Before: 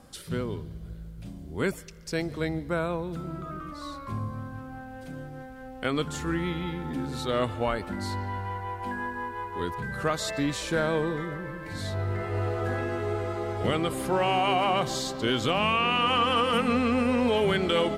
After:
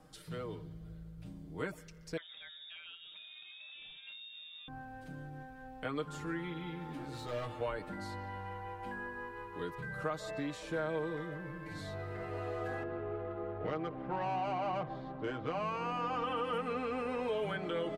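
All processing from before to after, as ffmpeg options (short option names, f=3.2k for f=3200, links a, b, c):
-filter_complex "[0:a]asettb=1/sr,asplit=3[a][b][c];[a]atrim=end=2.174[d];[b]atrim=start=2.17:end=4.68,asetpts=PTS-STARTPTS,afade=t=in:d=0.004:c=qsin,afade=t=out:st=2.506:d=0.004:c=qsin,lowpass=f=3.2k:t=q:w=0.5098,lowpass=f=3.2k:t=q:w=0.6013,lowpass=f=3.2k:t=q:w=0.9,lowpass=f=3.2k:t=q:w=2.563,afreqshift=-3800,aecho=1:1:5.1:0.37,atrim=end_sample=110691,acompressor=threshold=-33dB:ratio=3:attack=3.2:release=140:knee=1:detection=peak[e];[c]atrim=start=4.676[f];[d][e]acrossfade=d=0.004:c1=hsin:c2=qsin[g];[g][f]acrossfade=d=0.004:c1=qsin:c2=hsin,asettb=1/sr,asplit=3[h][i][j];[h]atrim=end=6.794[k];[i]atrim=start=6.79:end=7.61,asetpts=PTS-STARTPTS,afade=t=in:d=0.004:c=qsin,afade=t=out:st=0.816:d=0.004:c=qsin,bandreject=f=50:t=h:w=6,bandreject=f=100:t=h:w=6,bandreject=f=150:t=h:w=6,bandreject=f=200:t=h:w=6,bandreject=f=250:t=h:w=6,bandreject=f=300:t=h:w=6,bandreject=f=350:t=h:w=6,asoftclip=type=hard:threshold=-29dB,asplit=2[l][m];[m]adelay=17,volume=-5dB[n];[l][n]amix=inputs=2:normalize=0,atrim=end_sample=36162[o];[j]atrim=start=7.606[p];[k][o]acrossfade=d=0.004:c1=hsin:c2=qsin[q];[q][p]acrossfade=d=0.004:c1=qsin:c2=hsin,asettb=1/sr,asplit=3[r][s][t];[r]atrim=end=12.834[u];[s]atrim=start=12.83:end=16.24,asetpts=PTS-STARTPTS,afade=t=in:d=0.004:c=qsin,afade=t=out:st=3.406:d=0.004:c=qsin,lowpass=3.3k,adynamicsmooth=sensitivity=1:basefreq=1.2k[v];[t]atrim=start=16.236[w];[u][v]acrossfade=d=0.004:c1=hsin:c2=qsin[x];[x][w]acrossfade=d=0.004:c1=qsin:c2=hsin,equalizer=f=11k:t=o:w=2.4:g=-5,aecho=1:1:6.5:0.67,acrossover=split=380|1700[y][z][aa];[y]acompressor=threshold=-35dB:ratio=4[ab];[z]acompressor=threshold=-26dB:ratio=4[ac];[aa]acompressor=threshold=-42dB:ratio=4[ad];[ab][ac][ad]amix=inputs=3:normalize=0,volume=-8dB"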